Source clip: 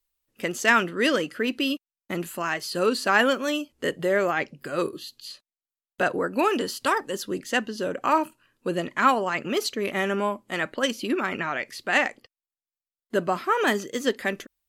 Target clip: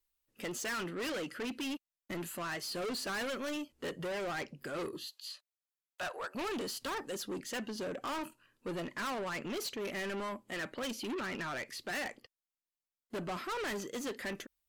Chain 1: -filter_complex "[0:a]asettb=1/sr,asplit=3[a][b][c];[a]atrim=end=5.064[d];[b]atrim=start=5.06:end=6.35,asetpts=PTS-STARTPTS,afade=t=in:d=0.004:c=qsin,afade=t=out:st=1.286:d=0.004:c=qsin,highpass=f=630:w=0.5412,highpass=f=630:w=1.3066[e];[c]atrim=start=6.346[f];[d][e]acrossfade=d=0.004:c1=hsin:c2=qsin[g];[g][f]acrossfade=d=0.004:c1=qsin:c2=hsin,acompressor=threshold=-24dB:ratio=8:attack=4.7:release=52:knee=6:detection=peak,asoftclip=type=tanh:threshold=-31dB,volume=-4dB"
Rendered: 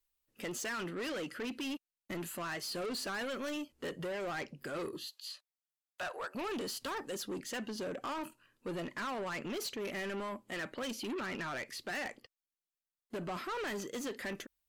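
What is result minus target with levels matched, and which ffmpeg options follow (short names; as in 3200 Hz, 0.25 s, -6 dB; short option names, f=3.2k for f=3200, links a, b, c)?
compressor: peak gain reduction +11.5 dB
-filter_complex "[0:a]asettb=1/sr,asplit=3[a][b][c];[a]atrim=end=5.064[d];[b]atrim=start=5.06:end=6.35,asetpts=PTS-STARTPTS,afade=t=in:d=0.004:c=qsin,afade=t=out:st=1.286:d=0.004:c=qsin,highpass=f=630:w=0.5412,highpass=f=630:w=1.3066[e];[c]atrim=start=6.346[f];[d][e]acrossfade=d=0.004:c1=hsin:c2=qsin[g];[g][f]acrossfade=d=0.004:c1=qsin:c2=hsin,asoftclip=type=tanh:threshold=-31dB,volume=-4dB"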